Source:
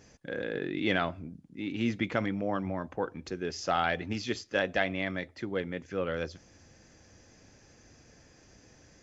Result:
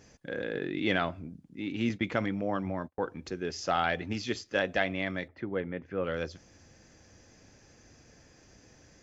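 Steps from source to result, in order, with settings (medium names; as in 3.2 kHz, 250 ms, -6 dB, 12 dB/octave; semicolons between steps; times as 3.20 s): 1.89–2.99 s: gate -37 dBFS, range -38 dB; 5.28–6.04 s: low-pass 2.1 kHz 12 dB/octave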